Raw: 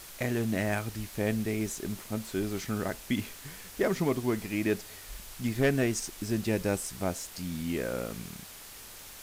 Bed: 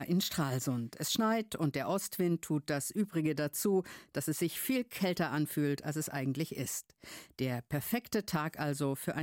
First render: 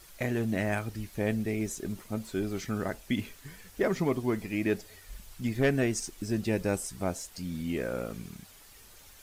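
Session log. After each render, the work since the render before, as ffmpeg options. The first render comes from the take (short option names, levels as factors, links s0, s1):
-af "afftdn=nr=9:nf=-47"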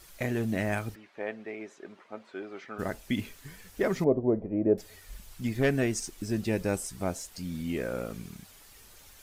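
-filter_complex "[0:a]asplit=3[s0][s1][s2];[s0]afade=t=out:st=0.94:d=0.02[s3];[s1]highpass=510,lowpass=2200,afade=t=in:st=0.94:d=0.02,afade=t=out:st=2.78:d=0.02[s4];[s2]afade=t=in:st=2.78:d=0.02[s5];[s3][s4][s5]amix=inputs=3:normalize=0,asettb=1/sr,asplit=3[s6][s7][s8];[s6]atrim=end=4.044[s9];[s7]atrim=start=4.04:end=4.78,asetpts=PTS-STARTPTS,afade=t=in:d=0.004:c=qsin,afade=t=out:st=0.736:d=0.004:c=qsin,lowpass=f=570:t=q:w=3.2[s10];[s8]atrim=start=4.776[s11];[s9][s10]acrossfade=d=0.004:c1=hsin:c2=qsin[s12];[s12][s11]acrossfade=d=0.004:c1=qsin:c2=hsin"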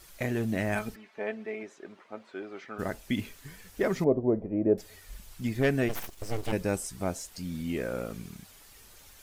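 -filter_complex "[0:a]asettb=1/sr,asplit=3[s0][s1][s2];[s0]atrim=end=0.754[s3];[s1]atrim=start=0.75:end=1.63,asetpts=PTS-STARTPTS,afade=t=in:d=0.004:c=qsin,afade=t=out:st=0.876:d=0.004:c=qsin,aecho=1:1:4.6:0.63,atrim=end_sample=38808[s4];[s2]atrim=start=1.626[s5];[s3][s4]acrossfade=d=0.004:c1=hsin:c2=qsin[s6];[s6][s5]acrossfade=d=0.004:c1=qsin:c2=hsin,asplit=3[s7][s8][s9];[s7]afade=t=out:st=5.88:d=0.02[s10];[s8]aeval=exprs='abs(val(0))':c=same,afade=t=in:st=5.88:d=0.02,afade=t=out:st=6.51:d=0.02[s11];[s9]afade=t=in:st=6.51:d=0.02[s12];[s10][s11][s12]amix=inputs=3:normalize=0"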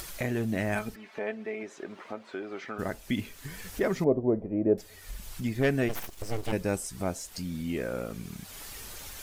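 -af "acompressor=mode=upward:threshold=0.0282:ratio=2.5"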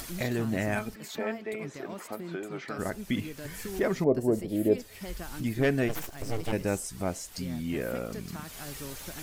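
-filter_complex "[1:a]volume=0.355[s0];[0:a][s0]amix=inputs=2:normalize=0"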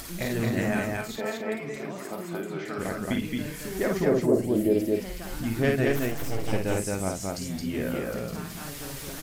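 -af "aecho=1:1:52.48|221.6|262.4:0.631|0.794|0.316"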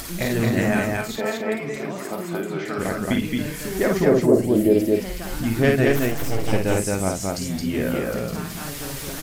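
-af "volume=2"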